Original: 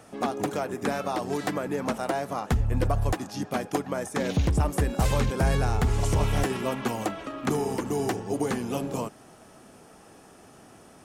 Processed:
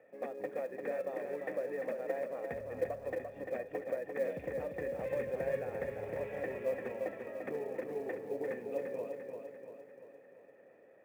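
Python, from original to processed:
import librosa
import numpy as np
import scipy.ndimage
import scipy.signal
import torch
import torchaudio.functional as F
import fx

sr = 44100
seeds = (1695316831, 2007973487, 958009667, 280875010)

p1 = fx.formant_cascade(x, sr, vowel='e')
p2 = fx.low_shelf(p1, sr, hz=220.0, db=-5.0)
p3 = fx.quant_float(p2, sr, bits=4)
p4 = scipy.signal.sosfilt(scipy.signal.butter(2, 120.0, 'highpass', fs=sr, output='sos'), p3)
p5 = p4 + fx.echo_feedback(p4, sr, ms=345, feedback_pct=54, wet_db=-5.5, dry=0)
y = p5 * 10.0 ** (1.0 / 20.0)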